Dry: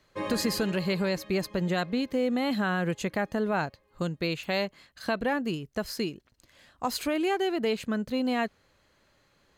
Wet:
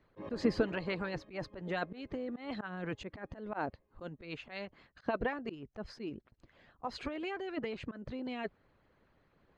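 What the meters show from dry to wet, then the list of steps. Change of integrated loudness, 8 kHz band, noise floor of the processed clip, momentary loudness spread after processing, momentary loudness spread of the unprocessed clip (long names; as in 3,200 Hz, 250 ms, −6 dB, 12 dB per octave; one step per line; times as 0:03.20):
−10.0 dB, below −20 dB, −72 dBFS, 12 LU, 7 LU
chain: harmonic and percussive parts rebalanced harmonic −16 dB
volume swells 134 ms
head-to-tape spacing loss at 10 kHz 36 dB
level +4.5 dB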